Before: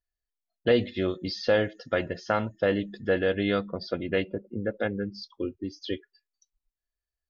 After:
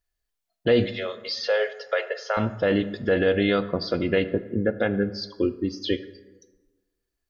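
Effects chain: limiter -19 dBFS, peak gain reduction 7.5 dB; 0.91–2.37 rippled Chebyshev high-pass 410 Hz, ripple 3 dB; reverb RT60 1.3 s, pre-delay 12 ms, DRR 12.5 dB; gain +7.5 dB

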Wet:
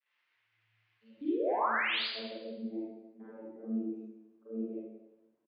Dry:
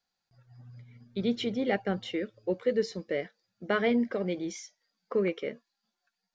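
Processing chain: per-bin expansion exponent 1.5; treble ducked by the level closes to 1300 Hz, closed at -27.5 dBFS; bell 590 Hz -11 dB 0.52 oct; comb 7 ms, depth 78%; reverse; compressor 6:1, threshold -40 dBFS, peak gain reduction 16 dB; reverse; vocoder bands 32, saw 95.7 Hz; varispeed +16%; crackle 540/s -62 dBFS; band-pass sweep 2200 Hz -> 330 Hz, 1.34–2.51; painted sound rise, 1.21–2.03, 270–5000 Hz -42 dBFS; air absorption 210 m; reverb RT60 0.95 s, pre-delay 32 ms, DRR -10 dB; gain +2.5 dB

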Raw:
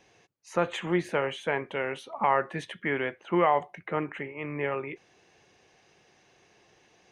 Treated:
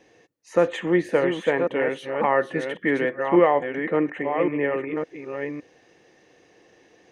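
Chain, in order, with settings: reverse delay 0.56 s, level -6 dB; small resonant body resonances 300/480/1800 Hz, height 11 dB, ringing for 30 ms

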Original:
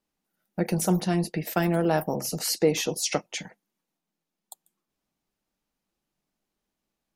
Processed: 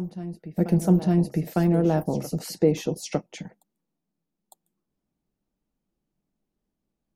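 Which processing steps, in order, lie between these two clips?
tilt shelf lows +8 dB, about 650 Hz; on a send: reverse echo 0.905 s -13.5 dB; on the sum: gain -1.5 dB

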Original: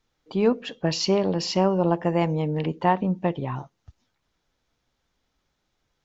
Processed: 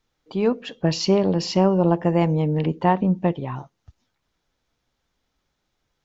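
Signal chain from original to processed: 0.78–3.33 low shelf 440 Hz +5.5 dB

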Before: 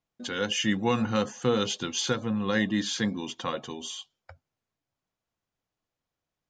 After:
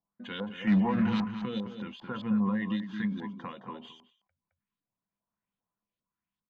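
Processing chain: median filter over 5 samples; high shelf 7600 Hz +9.5 dB; limiter -20 dBFS, peak gain reduction 6.5 dB; 0.67–1.25 sample leveller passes 3; LFO low-pass saw up 2.5 Hz 770–4200 Hz; small resonant body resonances 200/1000 Hz, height 14 dB, ringing for 95 ms; LFO notch sine 0.6 Hz 520–6400 Hz; outdoor echo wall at 37 m, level -9 dB; ending taper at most 100 dB/s; gain -8.5 dB

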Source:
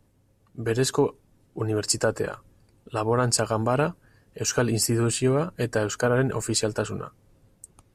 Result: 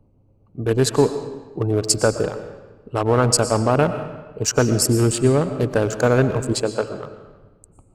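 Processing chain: Wiener smoothing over 25 samples; 6.53–7.04 tone controls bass -13 dB, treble -8 dB; digital reverb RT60 1.2 s, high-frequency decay 0.85×, pre-delay 75 ms, DRR 10 dB; gain +6 dB

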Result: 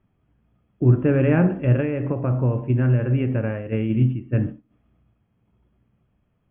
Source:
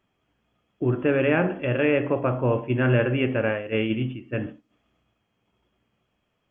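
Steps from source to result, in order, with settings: air absorption 360 m; 1.8–3.95 compressor, threshold -24 dBFS, peak gain reduction 8 dB; tone controls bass +12 dB, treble -10 dB

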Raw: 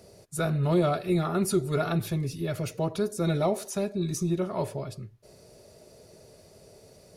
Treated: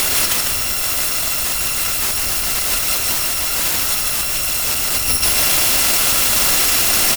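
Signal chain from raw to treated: FFT order left unsorted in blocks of 256 samples; high shelf 6000 Hz +3.5 dB; in parallel at +2.5 dB: compressor, threshold -30 dBFS, peak gain reduction 13 dB; on the sum: overdrive pedal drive 30 dB, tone 4900 Hz, clips at -9 dBFS; sine folder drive 20 dB, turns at -11.5 dBFS; on a send: frequency-shifting echo 0.151 s, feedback 50%, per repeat -68 Hz, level -3 dB

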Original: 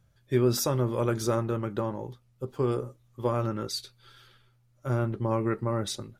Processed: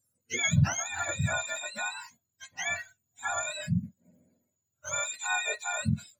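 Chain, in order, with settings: spectrum mirrored in octaves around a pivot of 910 Hz; spectral noise reduction 13 dB

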